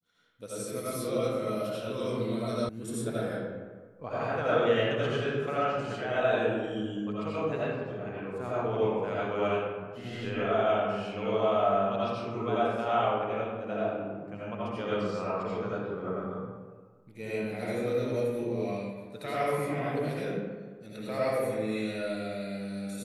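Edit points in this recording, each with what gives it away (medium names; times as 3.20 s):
2.69 s: sound stops dead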